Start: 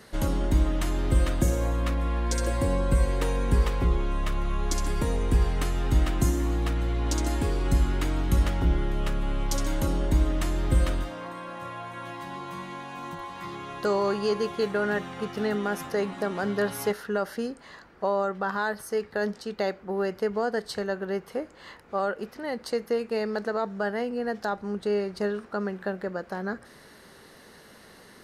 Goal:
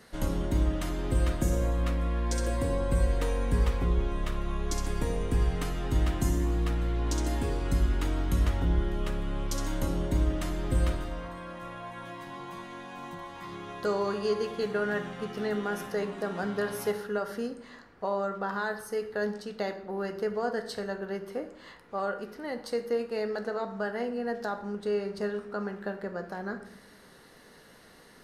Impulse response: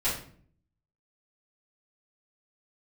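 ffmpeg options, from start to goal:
-filter_complex "[0:a]asplit=2[s0][s1];[1:a]atrim=start_sample=2205,asetrate=30870,aresample=44100[s2];[s1][s2]afir=irnorm=-1:irlink=0,volume=0.141[s3];[s0][s3]amix=inputs=2:normalize=0,volume=0.531"

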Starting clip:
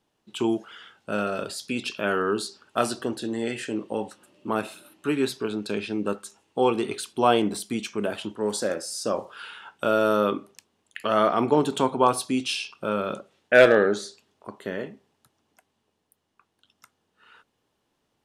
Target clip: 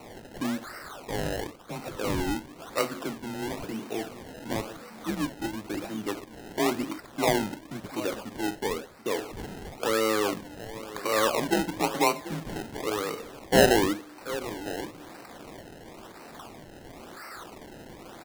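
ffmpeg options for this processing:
-filter_complex "[0:a]aeval=exprs='val(0)+0.5*0.0251*sgn(val(0))':c=same,asplit=2[s0][s1];[s1]aecho=0:1:735:0.178[s2];[s0][s2]amix=inputs=2:normalize=0,highpass=f=330:t=q:w=0.5412,highpass=f=330:t=q:w=1.307,lowpass=f=2800:t=q:w=0.5176,lowpass=f=2800:t=q:w=0.7071,lowpass=f=2800:t=q:w=1.932,afreqshift=-100,acrusher=samples=26:mix=1:aa=0.000001:lfo=1:lforange=26:lforate=0.97,volume=0.631"

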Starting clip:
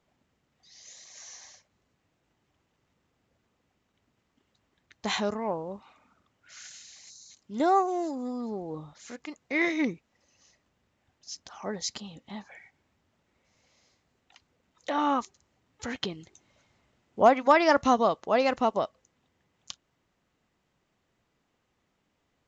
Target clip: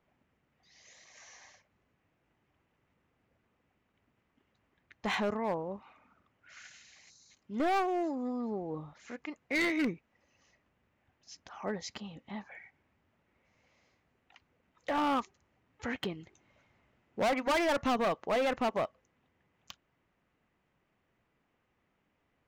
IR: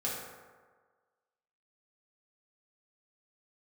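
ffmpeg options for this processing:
-af "lowpass=6400,highshelf=f=3100:t=q:w=1.5:g=-6,asoftclip=type=hard:threshold=0.0596,volume=0.841"

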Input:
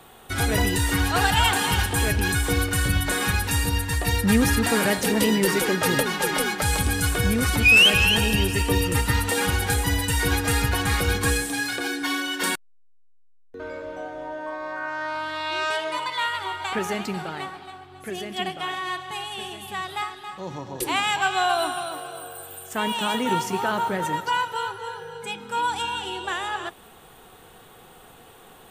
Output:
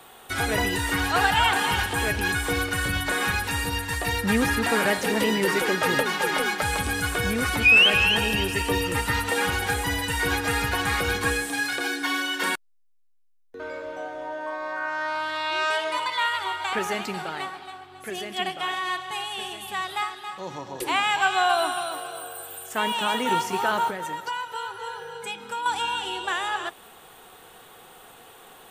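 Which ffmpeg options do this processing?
-filter_complex "[0:a]asettb=1/sr,asplit=3[s0][s1][s2];[s0]atrim=end=23.904[s3];[s1]atrim=start=23.9:end=25.66,asetpts=PTS-STARTPTS,afade=t=in:d=0.004:c=qsin,afade=t=out:st=1.756:d=0.004:c=qsin,acompressor=threshold=0.0316:ratio=4[s4];[s2]atrim=start=25.656[s5];[s3][s4]acrossfade=d=0.004:c1=hsin:c2=qsin[s6];[s6][s5]acrossfade=d=0.004:c1=qsin:c2=hsin,lowshelf=f=280:g=-10.5,acrossover=split=3000[s7][s8];[s8]acompressor=threshold=0.02:ratio=4:attack=1:release=60[s9];[s7][s9]amix=inputs=2:normalize=0,volume=1.26"

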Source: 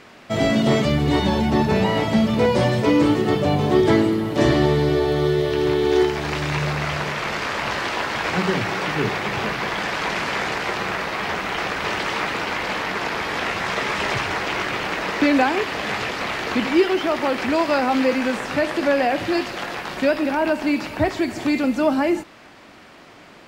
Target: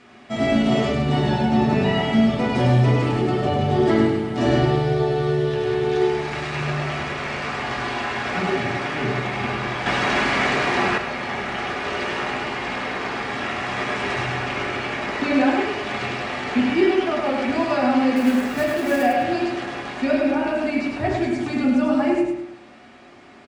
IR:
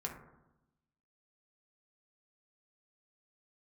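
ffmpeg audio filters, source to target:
-filter_complex "[0:a]aresample=22050,aresample=44100,asettb=1/sr,asplit=3[s0][s1][s2];[s0]atrim=end=18.164[s3];[s1]atrim=start=18.16:end=19.03,asetpts=PTS-STARTPTS,afade=t=in:d=0.004:c=qsin,afade=t=out:st=0.866:d=0.004:c=qsin,acrusher=bits=3:mode=log:mix=0:aa=0.000001[s4];[s2]atrim=start=19.026[s5];[s3][s4]acrossfade=d=0.004:c1=hsin:c2=qsin[s6];[s6][s5]acrossfade=d=0.004:c1=qsin:c2=hsin,aecho=1:1:103|206|309|412:0.631|0.164|0.0427|0.0111[s7];[1:a]atrim=start_sample=2205,asetrate=70560,aresample=44100[s8];[s7][s8]afir=irnorm=-1:irlink=0,asettb=1/sr,asplit=3[s9][s10][s11];[s9]atrim=end=9.864[s12];[s10]atrim=start=9.86:end=10.98,asetpts=PTS-STARTPTS,afade=t=in:d=0.004:c=qsin,afade=t=out:st=1.116:d=0.004:c=qsin,acontrast=54[s13];[s11]atrim=start=10.976[s14];[s12][s13]acrossfade=d=0.004:c1=hsin:c2=qsin[s15];[s15][s14]acrossfade=d=0.004:c1=qsin:c2=hsin"

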